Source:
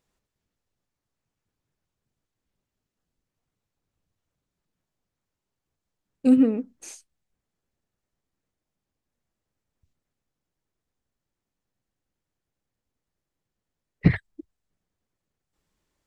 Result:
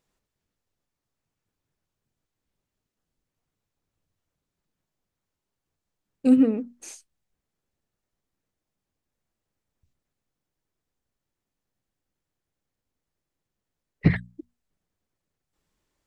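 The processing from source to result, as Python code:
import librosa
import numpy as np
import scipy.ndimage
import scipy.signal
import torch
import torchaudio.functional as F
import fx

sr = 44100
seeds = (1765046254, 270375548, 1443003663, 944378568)

y = fx.hum_notches(x, sr, base_hz=60, count=4)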